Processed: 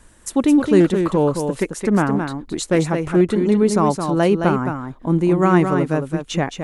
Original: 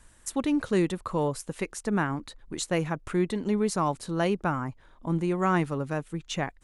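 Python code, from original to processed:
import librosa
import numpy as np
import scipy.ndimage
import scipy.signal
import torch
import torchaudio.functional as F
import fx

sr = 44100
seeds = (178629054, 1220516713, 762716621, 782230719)

y = fx.peak_eq(x, sr, hz=320.0, db=6.0, octaves=2.1)
y = y + 10.0 ** (-6.5 / 20.0) * np.pad(y, (int(217 * sr / 1000.0), 0))[:len(y)]
y = fx.doppler_dist(y, sr, depth_ms=0.2, at=(0.8, 3.21))
y = F.gain(torch.from_numpy(y), 5.5).numpy()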